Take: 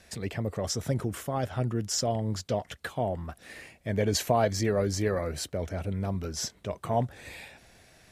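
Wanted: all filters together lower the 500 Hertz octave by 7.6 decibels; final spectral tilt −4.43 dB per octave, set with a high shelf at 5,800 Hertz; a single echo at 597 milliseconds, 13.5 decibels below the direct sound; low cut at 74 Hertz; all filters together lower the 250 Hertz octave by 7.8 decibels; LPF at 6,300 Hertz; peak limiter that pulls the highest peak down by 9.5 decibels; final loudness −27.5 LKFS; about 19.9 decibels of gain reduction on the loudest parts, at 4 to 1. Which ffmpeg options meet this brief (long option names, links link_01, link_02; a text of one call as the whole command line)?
ffmpeg -i in.wav -af "highpass=74,lowpass=6300,equalizer=frequency=250:width_type=o:gain=-8.5,equalizer=frequency=500:width_type=o:gain=-8,highshelf=frequency=5800:gain=-8,acompressor=threshold=-50dB:ratio=4,alimiter=level_in=19dB:limit=-24dB:level=0:latency=1,volume=-19dB,aecho=1:1:597:0.211,volume=26dB" out.wav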